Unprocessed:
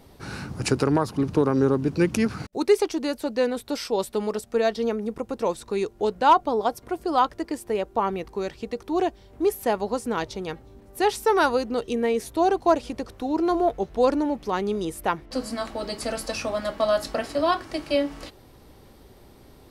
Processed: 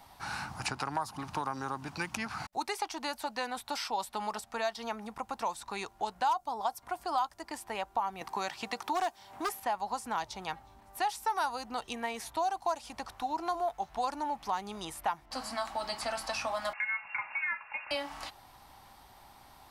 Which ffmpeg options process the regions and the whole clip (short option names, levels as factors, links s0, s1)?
-filter_complex "[0:a]asettb=1/sr,asplit=3[s0][s1][s2];[s0]atrim=end=8.214[s3];[s1]atrim=start=8.21:end=9.6,asetpts=PTS-STARTPTS,afade=t=in:d=0.004:c=qsin,afade=t=out:st=1.386:d=0.004:c=qsin,highpass=140,acontrast=86,aeval=exprs='0.316*(abs(mod(val(0)/0.316+3,4)-2)-1)':c=same[s4];[s2]atrim=start=9.596[s5];[s3][s4]acrossfade=d=0.004:c1=hsin:c2=qsin[s6];[s6][s5]acrossfade=d=0.004:c1=qsin:c2=hsin,asettb=1/sr,asplit=3[s7][s8][s9];[s7]atrim=end=16.734[s10];[s8]atrim=start=16.73:end=17.91,asetpts=PTS-STARTPTS,afade=t=in:d=0.004:c=qsin,afade=t=out:st=1.176:d=0.004:c=qsin,equalizer=f=220:w=1:g=-14,lowpass=f=2400:t=q:w=0.5098,lowpass=f=2400:t=q:w=0.6013,lowpass=f=2400:t=q:w=0.9,lowpass=f=2400:t=q:w=2.563,afreqshift=-2800[s11];[s9]atrim=start=17.906[s12];[s10][s11]acrossfade=d=0.004:c1=hsin:c2=qsin[s13];[s13][s12]acrossfade=d=0.004:c1=qsin:c2=hsin,lowshelf=f=610:t=q:w=3:g=-10,acrossover=split=660|5100[s14][s15][s16];[s14]acompressor=threshold=0.0126:ratio=4[s17];[s15]acompressor=threshold=0.0224:ratio=4[s18];[s16]acompressor=threshold=0.00631:ratio=4[s19];[s17][s18][s19]amix=inputs=3:normalize=0,volume=0.891"